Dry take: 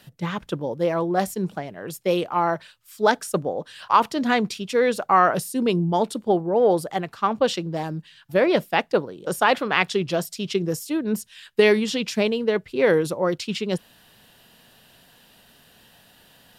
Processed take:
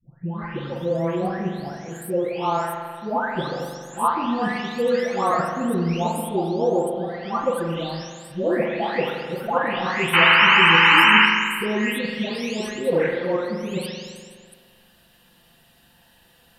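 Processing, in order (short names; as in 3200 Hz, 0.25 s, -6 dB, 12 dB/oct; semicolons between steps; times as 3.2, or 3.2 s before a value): spectral delay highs late, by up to 0.758 s; low shelf 71 Hz +7 dB; painted sound noise, 10.13–11.26, 820–3100 Hz -13 dBFS; reverb RT60 1.8 s, pre-delay 42 ms, DRR 2 dB; gain -2.5 dB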